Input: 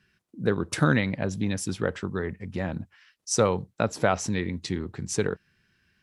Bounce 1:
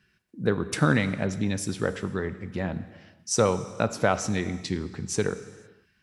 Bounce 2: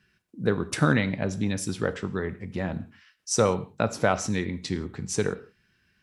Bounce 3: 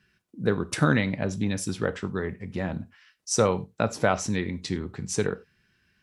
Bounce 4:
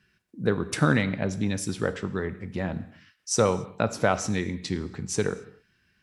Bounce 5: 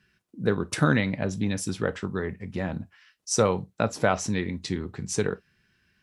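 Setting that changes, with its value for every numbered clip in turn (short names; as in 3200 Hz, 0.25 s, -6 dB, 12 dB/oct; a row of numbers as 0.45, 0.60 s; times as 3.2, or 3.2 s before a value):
non-linear reverb, gate: 530, 200, 120, 300, 80 ms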